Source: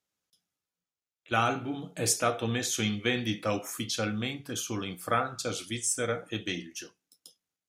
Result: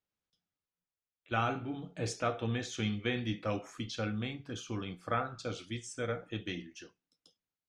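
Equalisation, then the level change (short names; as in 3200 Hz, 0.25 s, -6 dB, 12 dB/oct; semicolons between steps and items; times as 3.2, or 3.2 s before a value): air absorption 130 m; low shelf 75 Hz +11 dB; -5.0 dB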